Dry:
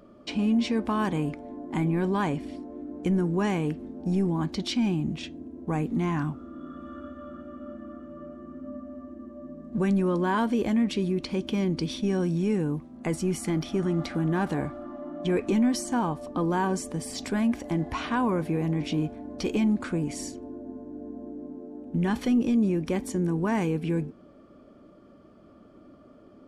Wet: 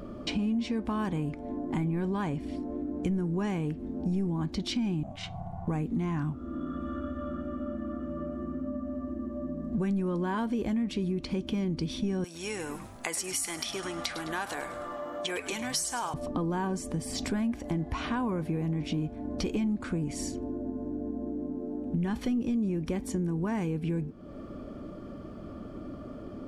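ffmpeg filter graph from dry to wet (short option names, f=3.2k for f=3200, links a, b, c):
-filter_complex "[0:a]asettb=1/sr,asplit=3[a][b][c];[a]atrim=end=5.034[d];[b]atrim=start=5.03:end=5.68,asetpts=PTS-STARTPTS,afade=t=in:d=0.004:c=qsin,afade=t=out:st=0.646:d=0.004:c=qsin,bass=f=250:g=-14,treble=f=4k:g=-2,aeval=exprs='val(0)*sin(2*PI*430*n/s)':c=same[e];[c]atrim=start=5.676[f];[d][e]acrossfade=d=0.004:c1=hsin:c2=qsin[g];[g][f]acrossfade=d=0.004:c1=qsin:c2=hsin,asettb=1/sr,asplit=3[h][i][j];[h]atrim=end=12.244[k];[i]atrim=start=12.24:end=16.14,asetpts=PTS-STARTPTS,afade=t=in:d=0.004:c=qsin,afade=t=out:st=3.896:d=0.004:c=qsin,highpass=740,highshelf=f=3.1k:g=11.5,asplit=5[l][m][n][o][p];[m]adelay=104,afreqshift=-96,volume=-13dB[q];[n]adelay=208,afreqshift=-192,volume=-21.4dB[r];[o]adelay=312,afreqshift=-288,volume=-29.8dB[s];[p]adelay=416,afreqshift=-384,volume=-38.2dB[t];[l][q][r][s][t]amix=inputs=5:normalize=0,atrim=end_sample=171990[u];[j]atrim=start=16.136[v];[k][u]acrossfade=d=0.004:c1=hsin:c2=qsin[w];[w][v]acrossfade=d=0.004:c1=qsin:c2=hsin,lowshelf=f=140:g=10.5,acompressor=threshold=-42dB:ratio=3,volume=8.5dB"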